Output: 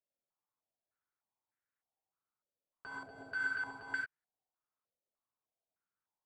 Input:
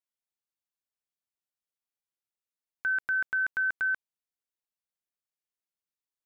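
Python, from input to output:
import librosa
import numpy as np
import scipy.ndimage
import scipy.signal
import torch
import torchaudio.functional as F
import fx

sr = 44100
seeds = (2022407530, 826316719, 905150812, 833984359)

y = fx.level_steps(x, sr, step_db=21)
y = (np.mod(10.0 ** (39.5 / 20.0) * y + 1.0, 2.0) - 1.0) / 10.0 ** (39.5 / 20.0)
y = fx.rev_gated(y, sr, seeds[0], gate_ms=120, shape='rising', drr_db=-1.0)
y = fx.filter_held_lowpass(y, sr, hz=3.3, low_hz=570.0, high_hz=1700.0)
y = F.gain(torch.from_numpy(y), 7.5).numpy()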